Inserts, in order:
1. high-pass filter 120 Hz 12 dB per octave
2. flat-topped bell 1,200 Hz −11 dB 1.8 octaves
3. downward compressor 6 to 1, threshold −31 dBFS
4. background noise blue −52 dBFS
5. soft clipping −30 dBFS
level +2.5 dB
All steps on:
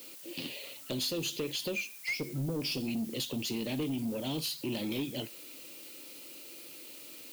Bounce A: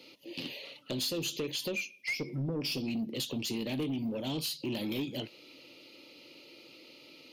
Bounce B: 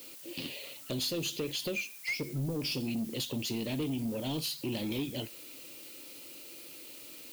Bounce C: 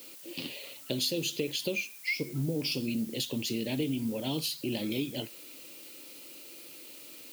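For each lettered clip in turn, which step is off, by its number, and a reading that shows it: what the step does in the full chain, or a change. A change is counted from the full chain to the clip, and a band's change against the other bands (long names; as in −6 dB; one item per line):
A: 4, change in momentary loudness spread +7 LU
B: 1, 125 Hz band +1.5 dB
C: 5, distortion level −15 dB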